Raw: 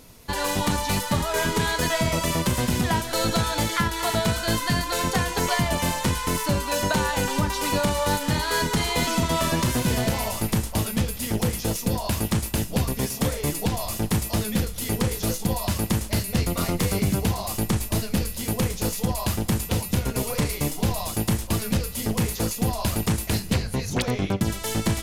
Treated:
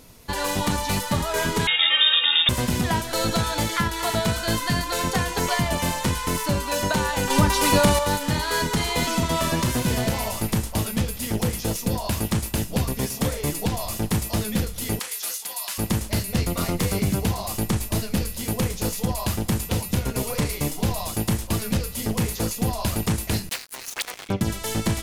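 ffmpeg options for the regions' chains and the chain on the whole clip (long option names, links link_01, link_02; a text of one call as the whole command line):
ffmpeg -i in.wav -filter_complex "[0:a]asettb=1/sr,asplit=3[link_01][link_02][link_03];[link_01]atrim=end=1.674[link_04];[link_02]atrim=start=1.67:end=2.49,asetpts=PTS-STARTPTS,afade=type=in:duration=0.004:curve=qsin,afade=type=out:start_time=0.816:duration=0.004:curve=qsin,lowpass=frequency=3200:width_type=q:width=0.5098,lowpass=frequency=3200:width_type=q:width=0.6013,lowpass=frequency=3200:width_type=q:width=0.9,lowpass=frequency=3200:width_type=q:width=2.563,afreqshift=-3800,tiltshelf=frequency=770:gain=-6[link_05];[link_03]atrim=start=2.486[link_06];[link_04][link_05]acrossfade=duration=0.004:curve1=hsin:curve2=qsin[link_07];[link_07][link_06]acrossfade=duration=0.004:curve1=qsin:curve2=hsin,asettb=1/sr,asplit=3[link_08][link_09][link_10];[link_08]atrim=end=7.304[link_11];[link_09]atrim=start=7.3:end=7.99,asetpts=PTS-STARTPTS,afade=type=in:duration=0.004:curve=qsin,afade=type=out:start_time=0.686:duration=0.004:curve=qsin,equalizer=frequency=10000:width=7.7:gain=3.5,acontrast=49[link_12];[link_10]atrim=start=7.986[link_13];[link_11][link_12]acrossfade=duration=0.004:curve1=hsin:curve2=qsin[link_14];[link_14][link_13]acrossfade=duration=0.004:curve1=qsin:curve2=hsin,asettb=1/sr,asplit=3[link_15][link_16][link_17];[link_15]atrim=end=14.994[link_18];[link_16]atrim=start=14.99:end=15.78,asetpts=PTS-STARTPTS,afade=type=in:duration=0.004:curve=qsin,afade=type=out:start_time=0.786:duration=0.004:curve=qsin,highpass=1300,equalizer=frequency=11000:width_type=o:width=1:gain=3.5,asoftclip=type=hard:threshold=-19.5dB[link_19];[link_17]atrim=start=15.776[link_20];[link_18][link_19]acrossfade=duration=0.004:curve1=hsin:curve2=qsin[link_21];[link_21][link_20]acrossfade=duration=0.004:curve1=qsin:curve2=hsin,asettb=1/sr,asplit=3[link_22][link_23][link_24];[link_22]atrim=end=23.494[link_25];[link_23]atrim=start=23.49:end=24.29,asetpts=PTS-STARTPTS,afade=type=in:duration=0.004:curve=qsin,afade=type=out:start_time=0.796:duration=0.004:curve=qsin,highpass=1000,highshelf=frequency=11000:gain=9,acrusher=bits=4:mix=0:aa=0.5[link_26];[link_24]atrim=start=24.286[link_27];[link_25][link_26]acrossfade=duration=0.004:curve1=hsin:curve2=qsin[link_28];[link_28][link_27]acrossfade=duration=0.004:curve1=qsin:curve2=hsin" out.wav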